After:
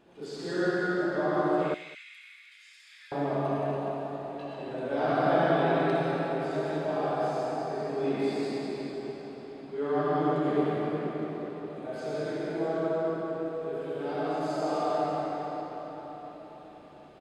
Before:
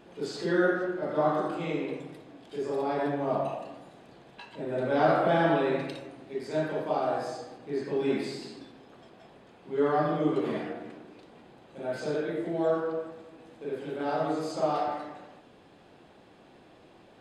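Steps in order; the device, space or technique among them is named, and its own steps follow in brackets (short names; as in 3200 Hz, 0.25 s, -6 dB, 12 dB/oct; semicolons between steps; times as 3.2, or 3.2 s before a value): cathedral (reverb RT60 5.0 s, pre-delay 63 ms, DRR -6 dB); 1.74–3.12 elliptic high-pass 1900 Hz, stop band 60 dB; echo 0.205 s -20 dB; gain -7 dB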